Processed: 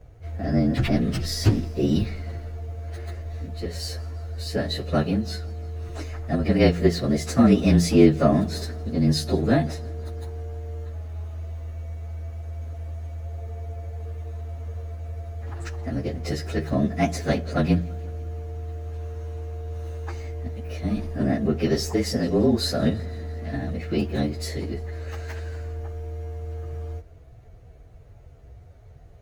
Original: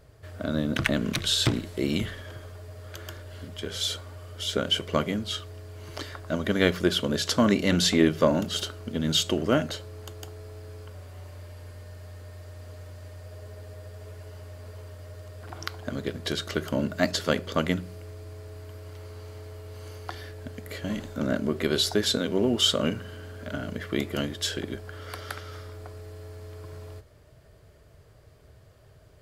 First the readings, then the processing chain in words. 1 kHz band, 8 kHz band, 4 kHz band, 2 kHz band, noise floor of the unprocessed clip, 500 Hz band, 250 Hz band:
+2.0 dB, -3.0 dB, -6.5 dB, -3.0 dB, -54 dBFS, +2.5 dB, +5.5 dB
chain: frequency axis rescaled in octaves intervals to 111%; tilt EQ -2 dB/octave; modulated delay 169 ms, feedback 66%, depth 95 cents, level -24 dB; trim +3.5 dB

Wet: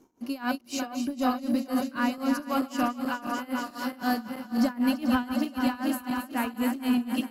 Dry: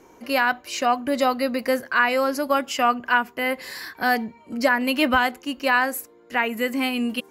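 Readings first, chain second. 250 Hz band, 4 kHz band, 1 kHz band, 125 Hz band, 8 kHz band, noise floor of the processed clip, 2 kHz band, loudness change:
+1.0 dB, -9.0 dB, -9.0 dB, no reading, -5.5 dB, -49 dBFS, -13.5 dB, -6.0 dB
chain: backward echo that repeats 218 ms, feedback 82%, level -6 dB; graphic EQ 250/500/2000 Hz +9/-7/-11 dB; waveshaping leveller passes 1; tremolo 3.9 Hz, depth 90%; endings held to a fixed fall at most 580 dB/s; trim -7 dB

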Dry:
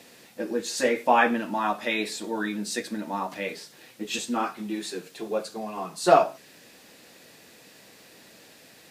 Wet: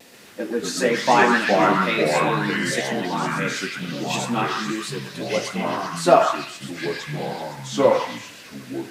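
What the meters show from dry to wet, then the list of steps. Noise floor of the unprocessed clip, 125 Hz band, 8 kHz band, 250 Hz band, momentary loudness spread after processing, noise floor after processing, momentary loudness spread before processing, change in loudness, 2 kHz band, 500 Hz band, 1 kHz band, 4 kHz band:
-53 dBFS, +14.5 dB, +5.0 dB, +6.5 dB, 14 LU, -42 dBFS, 15 LU, +5.0 dB, +8.0 dB, +6.5 dB, +5.5 dB, +7.5 dB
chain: vibrato 1.1 Hz 32 cents; ever faster or slower copies 134 ms, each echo -4 st, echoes 2; repeats whose band climbs or falls 128 ms, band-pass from 1.4 kHz, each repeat 0.7 oct, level -0.5 dB; trim +3 dB

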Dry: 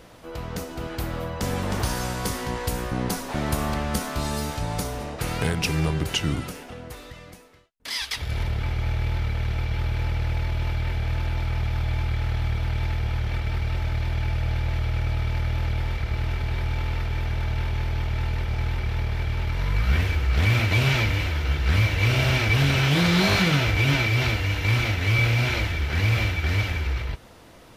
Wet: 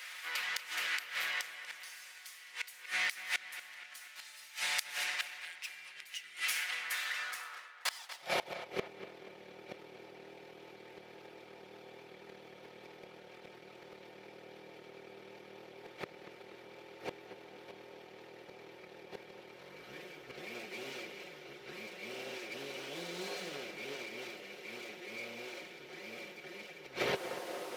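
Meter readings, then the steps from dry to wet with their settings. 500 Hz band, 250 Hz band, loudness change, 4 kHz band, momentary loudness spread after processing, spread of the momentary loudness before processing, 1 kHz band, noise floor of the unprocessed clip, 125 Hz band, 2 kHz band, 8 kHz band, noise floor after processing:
-12.0 dB, -22.5 dB, -15.0 dB, -12.0 dB, 18 LU, 10 LU, -14.5 dB, -45 dBFS, -39.5 dB, -11.5 dB, -9.5 dB, -55 dBFS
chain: comb filter that takes the minimum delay 5.5 ms; dynamic bell 1.2 kHz, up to -5 dB, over -41 dBFS, Q 0.84; high-pass sweep 2 kHz -> 430 Hz, 6.85–8.86 s; inverted gate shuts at -26 dBFS, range -24 dB; tape echo 238 ms, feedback 58%, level -11 dB, low-pass 3.8 kHz; trim +5.5 dB

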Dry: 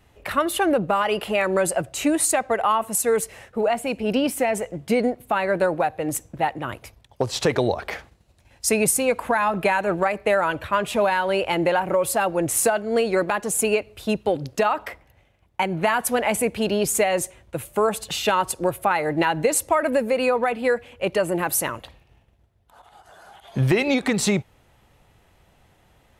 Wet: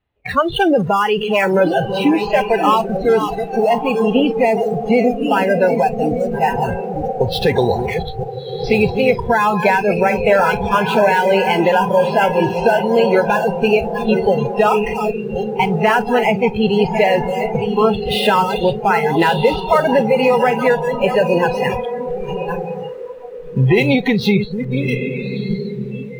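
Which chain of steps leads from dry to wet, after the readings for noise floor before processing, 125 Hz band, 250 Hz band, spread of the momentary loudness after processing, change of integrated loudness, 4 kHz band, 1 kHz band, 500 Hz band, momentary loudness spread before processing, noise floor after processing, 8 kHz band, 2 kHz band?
-59 dBFS, +9.5 dB, +8.0 dB, 9 LU, +6.5 dB, +6.0 dB, +7.5 dB, +8.0 dB, 7 LU, -28 dBFS, under -10 dB, +6.5 dB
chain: chunks repeated in reverse 594 ms, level -8.5 dB; steep low-pass 4.2 kHz 36 dB/octave; in parallel at -8 dB: Schmitt trigger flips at -31.5 dBFS; on the sum: echo that smears into a reverb 1251 ms, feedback 44%, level -5.5 dB; spectral noise reduction 23 dB; trim +5 dB

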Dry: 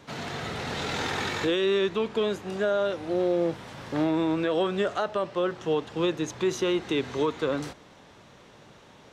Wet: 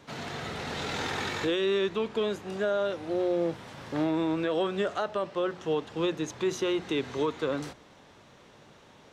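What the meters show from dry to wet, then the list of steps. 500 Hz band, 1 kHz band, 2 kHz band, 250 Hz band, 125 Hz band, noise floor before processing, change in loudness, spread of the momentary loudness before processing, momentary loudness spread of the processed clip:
-2.5 dB, -2.5 dB, -2.5 dB, -2.5 dB, -3.0 dB, -53 dBFS, -2.5 dB, 7 LU, 8 LU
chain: hum notches 60/120/180 Hz; trim -2.5 dB

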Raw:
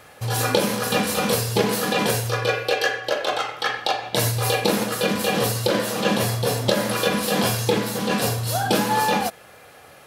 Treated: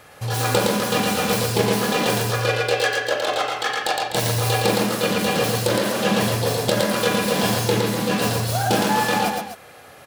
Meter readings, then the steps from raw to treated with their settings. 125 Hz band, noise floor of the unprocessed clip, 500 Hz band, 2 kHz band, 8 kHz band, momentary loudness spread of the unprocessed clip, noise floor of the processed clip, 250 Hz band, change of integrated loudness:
+1.5 dB, -47 dBFS, +1.5 dB, +1.5 dB, +0.5 dB, 4 LU, -45 dBFS, +1.5 dB, +1.5 dB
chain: self-modulated delay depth 0.11 ms; loudspeakers at several distances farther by 39 m -3 dB, 86 m -10 dB

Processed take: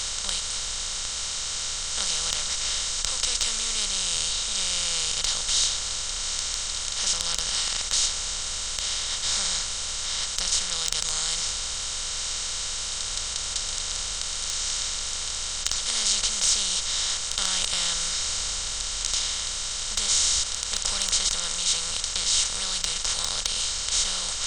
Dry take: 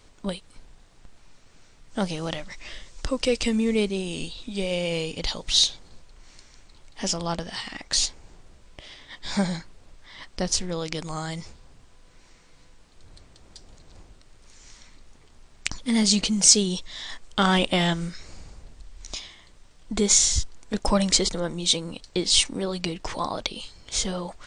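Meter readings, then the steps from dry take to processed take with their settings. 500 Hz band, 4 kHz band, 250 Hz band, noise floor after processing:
-14.5 dB, +3.5 dB, -22.5 dB, -31 dBFS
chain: spectral levelling over time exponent 0.2; amplifier tone stack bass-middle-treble 10-0-10; in parallel at -10 dB: wavefolder -1.5 dBFS; on the sum: trim -12.5 dB

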